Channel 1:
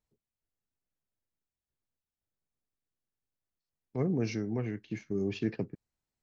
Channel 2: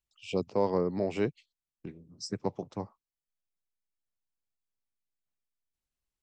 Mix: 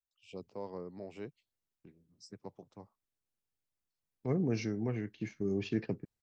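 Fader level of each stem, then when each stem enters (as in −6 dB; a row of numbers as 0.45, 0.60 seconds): −1.5, −15.0 decibels; 0.30, 0.00 seconds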